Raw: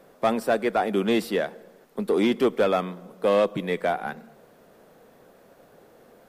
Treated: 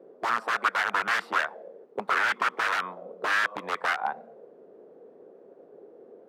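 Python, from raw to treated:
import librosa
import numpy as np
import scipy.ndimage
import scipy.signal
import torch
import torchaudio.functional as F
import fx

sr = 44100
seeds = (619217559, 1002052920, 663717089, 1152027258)

y = scipy.signal.sosfilt(scipy.signal.butter(2, 100.0, 'highpass', fs=sr, output='sos'), x)
y = (np.mod(10.0 ** (19.5 / 20.0) * y + 1.0, 2.0) - 1.0) / 10.0 ** (19.5 / 20.0)
y = fx.auto_wah(y, sr, base_hz=380.0, top_hz=2600.0, q=3.2, full_db=-19.0, direction='up')
y = y * 10.0 ** (8.5 / 20.0)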